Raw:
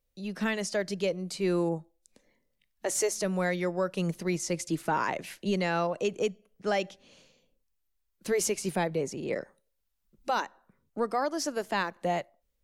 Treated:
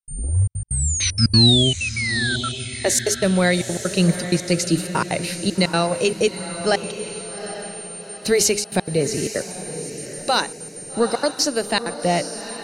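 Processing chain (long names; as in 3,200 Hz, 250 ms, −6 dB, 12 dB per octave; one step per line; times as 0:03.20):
turntable start at the beginning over 2.14 s
notch filter 3,400 Hz, Q 6
sound drawn into the spectrogram fall, 0:00.67–0:02.49, 1,300–9,200 Hz −35 dBFS
graphic EQ with 15 bands 100 Hz +12 dB, 1,000 Hz −5 dB, 4,000 Hz +12 dB
automatic gain control gain up to 15 dB
steady tone 9,000 Hz −30 dBFS
tuned comb filter 58 Hz, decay 1.6 s, harmonics all, mix 30%
hum removal 103.4 Hz, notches 5
gate pattern ".xxxxx.x" 191 BPM −60 dB
feedback delay with all-pass diffusion 818 ms, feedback 44%, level −10.5 dB
AAC 128 kbit/s 48,000 Hz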